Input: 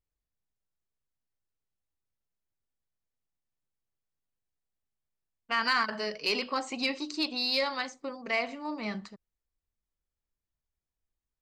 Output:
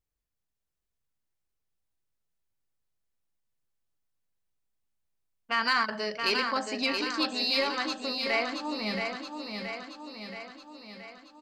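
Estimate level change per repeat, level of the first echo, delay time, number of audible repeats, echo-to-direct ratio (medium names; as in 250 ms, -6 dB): -4.5 dB, -5.5 dB, 675 ms, 7, -3.5 dB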